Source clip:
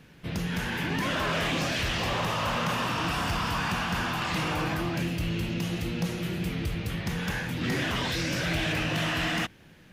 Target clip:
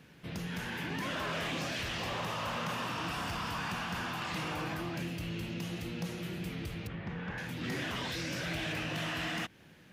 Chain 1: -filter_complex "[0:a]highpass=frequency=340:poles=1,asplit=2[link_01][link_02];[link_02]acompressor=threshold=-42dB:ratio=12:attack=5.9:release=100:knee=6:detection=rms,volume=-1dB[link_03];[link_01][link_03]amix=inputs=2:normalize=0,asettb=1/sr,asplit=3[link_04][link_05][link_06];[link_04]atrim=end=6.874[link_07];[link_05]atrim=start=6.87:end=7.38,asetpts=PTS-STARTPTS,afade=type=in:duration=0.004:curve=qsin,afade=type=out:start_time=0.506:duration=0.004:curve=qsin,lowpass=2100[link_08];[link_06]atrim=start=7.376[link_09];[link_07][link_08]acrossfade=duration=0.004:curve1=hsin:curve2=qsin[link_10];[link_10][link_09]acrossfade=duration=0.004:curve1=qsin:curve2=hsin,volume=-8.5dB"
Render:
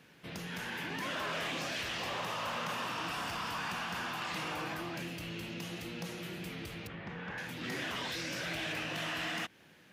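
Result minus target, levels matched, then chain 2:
125 Hz band −5.5 dB
-filter_complex "[0:a]highpass=frequency=88:poles=1,asplit=2[link_01][link_02];[link_02]acompressor=threshold=-42dB:ratio=12:attack=5.9:release=100:knee=6:detection=rms,volume=-1dB[link_03];[link_01][link_03]amix=inputs=2:normalize=0,asettb=1/sr,asplit=3[link_04][link_05][link_06];[link_04]atrim=end=6.874[link_07];[link_05]atrim=start=6.87:end=7.38,asetpts=PTS-STARTPTS,afade=type=in:duration=0.004:curve=qsin,afade=type=out:start_time=0.506:duration=0.004:curve=qsin,lowpass=2100[link_08];[link_06]atrim=start=7.376[link_09];[link_07][link_08]acrossfade=duration=0.004:curve1=hsin:curve2=qsin[link_10];[link_10][link_09]acrossfade=duration=0.004:curve1=qsin:curve2=hsin,volume=-8.5dB"

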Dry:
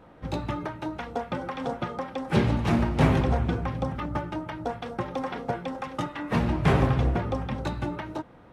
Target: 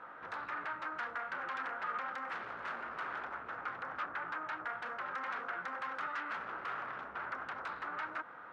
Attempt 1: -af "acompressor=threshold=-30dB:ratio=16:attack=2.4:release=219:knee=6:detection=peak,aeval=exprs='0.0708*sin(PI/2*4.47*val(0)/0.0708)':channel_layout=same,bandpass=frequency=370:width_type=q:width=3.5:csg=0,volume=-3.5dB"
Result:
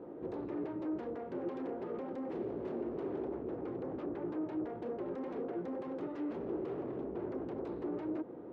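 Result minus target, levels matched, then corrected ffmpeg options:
500 Hz band +11.5 dB
-af "acompressor=threshold=-30dB:ratio=16:attack=2.4:release=219:knee=6:detection=peak,aeval=exprs='0.0708*sin(PI/2*4.47*val(0)/0.0708)':channel_layout=same,bandpass=frequency=1400:width_type=q:width=3.5:csg=0,volume=-3.5dB"

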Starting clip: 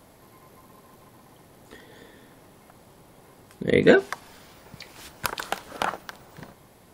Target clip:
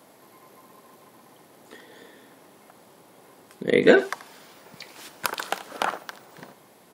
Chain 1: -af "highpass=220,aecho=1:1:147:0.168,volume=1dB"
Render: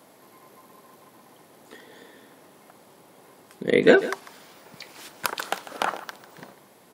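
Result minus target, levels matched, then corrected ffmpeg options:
echo 64 ms late
-af "highpass=220,aecho=1:1:83:0.168,volume=1dB"

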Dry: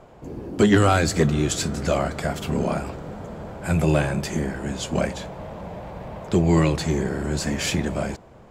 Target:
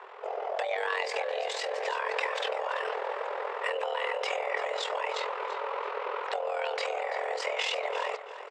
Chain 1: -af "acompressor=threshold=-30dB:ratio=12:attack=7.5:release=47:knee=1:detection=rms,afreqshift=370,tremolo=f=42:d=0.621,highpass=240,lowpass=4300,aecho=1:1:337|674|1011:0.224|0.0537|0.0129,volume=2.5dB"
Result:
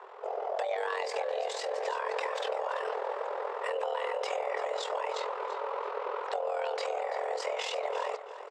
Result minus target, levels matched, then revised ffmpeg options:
2,000 Hz band −4.5 dB
-af "acompressor=threshold=-30dB:ratio=12:attack=7.5:release=47:knee=1:detection=rms,equalizer=frequency=2000:width_type=o:width=1.8:gain=7.5,afreqshift=370,tremolo=f=42:d=0.621,highpass=240,lowpass=4300,aecho=1:1:337|674|1011:0.224|0.0537|0.0129,volume=2.5dB"

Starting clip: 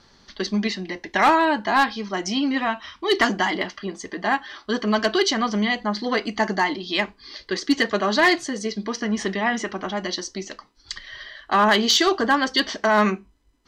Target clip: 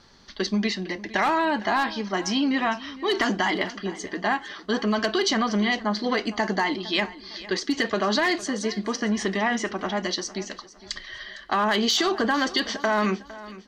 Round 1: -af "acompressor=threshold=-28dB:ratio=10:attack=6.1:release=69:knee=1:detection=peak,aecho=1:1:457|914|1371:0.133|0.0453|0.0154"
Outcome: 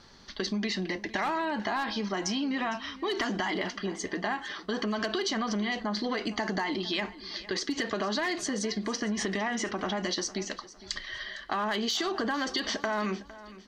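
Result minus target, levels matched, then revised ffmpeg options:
downward compressor: peak gain reduction +7.5 dB
-af "acompressor=threshold=-19.5dB:ratio=10:attack=6.1:release=69:knee=1:detection=peak,aecho=1:1:457|914|1371:0.133|0.0453|0.0154"

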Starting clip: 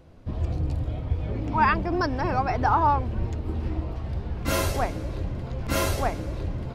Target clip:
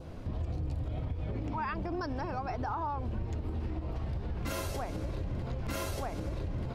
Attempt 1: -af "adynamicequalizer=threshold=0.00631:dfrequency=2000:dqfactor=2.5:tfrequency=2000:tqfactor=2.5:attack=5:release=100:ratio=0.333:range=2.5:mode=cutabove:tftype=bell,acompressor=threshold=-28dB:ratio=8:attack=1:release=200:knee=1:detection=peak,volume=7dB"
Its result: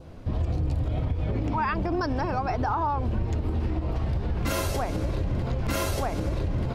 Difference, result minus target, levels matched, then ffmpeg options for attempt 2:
downward compressor: peak gain reduction −8.5 dB
-af "adynamicequalizer=threshold=0.00631:dfrequency=2000:dqfactor=2.5:tfrequency=2000:tqfactor=2.5:attack=5:release=100:ratio=0.333:range=2.5:mode=cutabove:tftype=bell,acompressor=threshold=-37.5dB:ratio=8:attack=1:release=200:knee=1:detection=peak,volume=7dB"

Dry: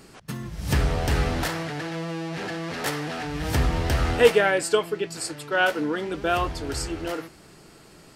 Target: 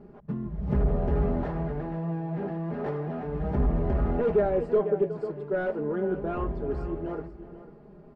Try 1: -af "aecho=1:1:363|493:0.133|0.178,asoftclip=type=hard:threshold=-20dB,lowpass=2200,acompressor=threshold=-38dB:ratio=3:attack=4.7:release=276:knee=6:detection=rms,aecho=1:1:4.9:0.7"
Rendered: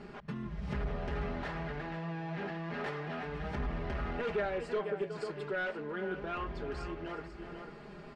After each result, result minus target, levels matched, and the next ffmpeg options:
2,000 Hz band +12.5 dB; downward compressor: peak gain reduction +12.5 dB
-af "aecho=1:1:363|493:0.133|0.178,asoftclip=type=hard:threshold=-20dB,lowpass=660,acompressor=threshold=-38dB:ratio=3:attack=4.7:release=276:knee=6:detection=rms,aecho=1:1:4.9:0.7"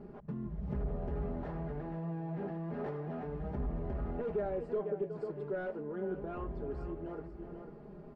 downward compressor: peak gain reduction +12.5 dB
-af "aecho=1:1:363|493:0.133|0.178,asoftclip=type=hard:threshold=-20dB,lowpass=660,aecho=1:1:4.9:0.7"

